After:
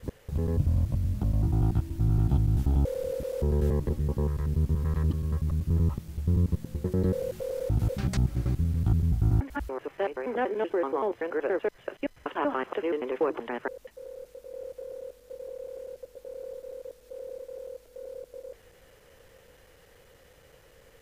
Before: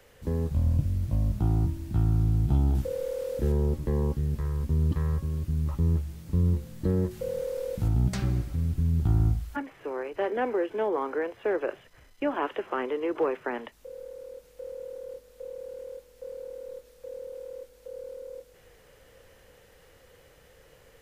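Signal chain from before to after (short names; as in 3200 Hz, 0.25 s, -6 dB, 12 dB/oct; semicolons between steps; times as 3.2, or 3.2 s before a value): slices in reverse order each 95 ms, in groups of 3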